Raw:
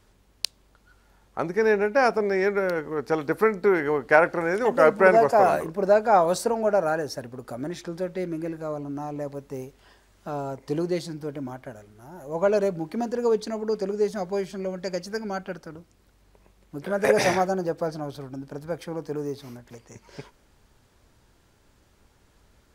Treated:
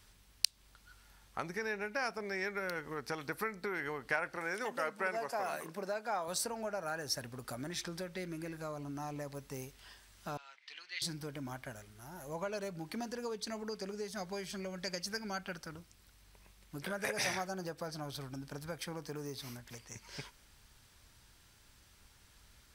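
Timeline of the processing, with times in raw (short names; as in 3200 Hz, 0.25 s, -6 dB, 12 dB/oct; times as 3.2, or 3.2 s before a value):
4.36–6.28 HPF 190 Hz
10.37–11.02 Butterworth band-pass 2600 Hz, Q 1.2
whole clip: compressor 3:1, threshold -31 dBFS; passive tone stack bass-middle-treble 5-5-5; notch 6900 Hz, Q 14; gain +10.5 dB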